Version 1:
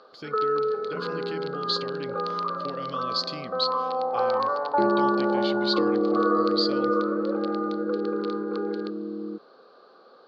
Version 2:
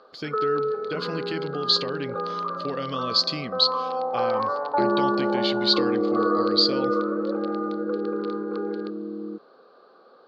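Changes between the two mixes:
speech +7.0 dB; first sound: add low-pass 3.3 kHz 6 dB/octave

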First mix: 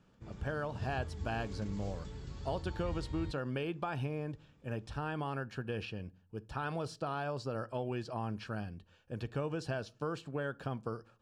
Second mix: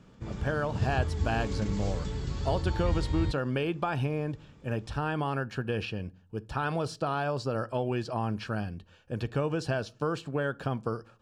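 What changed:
speech +7.0 dB; background +11.5 dB

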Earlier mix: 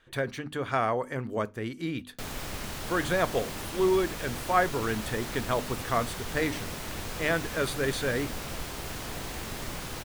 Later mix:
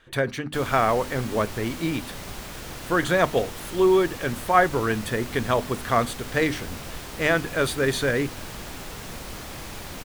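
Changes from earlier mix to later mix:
speech +6.0 dB; background: entry -1.65 s

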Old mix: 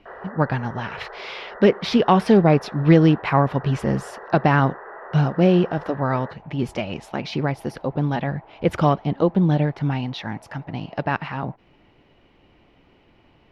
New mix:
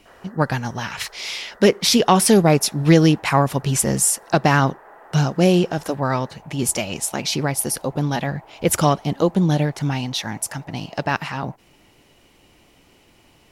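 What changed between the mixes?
first sound -11.5 dB; master: remove distance through air 330 m

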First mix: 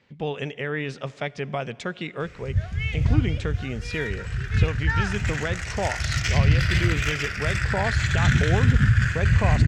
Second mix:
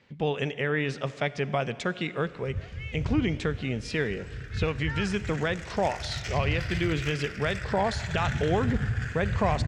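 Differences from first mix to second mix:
speech: send +6.5 dB; background -10.5 dB

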